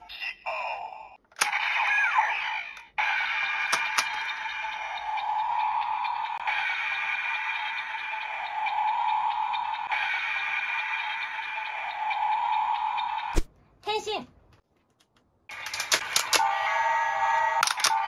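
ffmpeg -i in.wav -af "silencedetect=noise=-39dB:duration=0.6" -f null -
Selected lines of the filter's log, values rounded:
silence_start: 14.23
silence_end: 15.49 | silence_duration: 1.27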